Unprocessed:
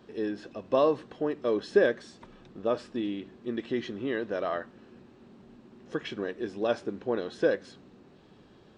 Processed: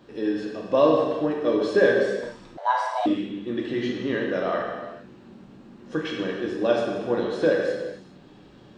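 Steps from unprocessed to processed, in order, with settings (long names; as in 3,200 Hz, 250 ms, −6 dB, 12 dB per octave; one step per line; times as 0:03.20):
reverb whose tail is shaped and stops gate 460 ms falling, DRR −2 dB
0:02.57–0:03.06: frequency shifter +400 Hz
level +2 dB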